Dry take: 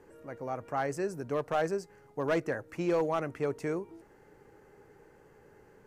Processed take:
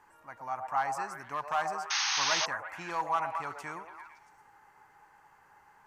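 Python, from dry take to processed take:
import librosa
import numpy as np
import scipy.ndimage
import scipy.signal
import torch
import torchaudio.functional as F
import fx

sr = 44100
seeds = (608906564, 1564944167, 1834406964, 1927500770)

y = fx.low_shelf_res(x, sr, hz=660.0, db=-11.5, q=3.0)
y = fx.echo_stepped(y, sr, ms=113, hz=630.0, octaves=0.7, feedback_pct=70, wet_db=-3)
y = fx.spec_paint(y, sr, seeds[0], shape='noise', start_s=1.9, length_s=0.56, low_hz=750.0, high_hz=6600.0, level_db=-30.0)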